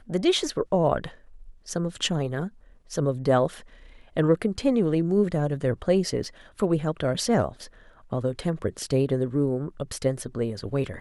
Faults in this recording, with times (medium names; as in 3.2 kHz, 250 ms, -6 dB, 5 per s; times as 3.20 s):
6.24 s: dropout 3.1 ms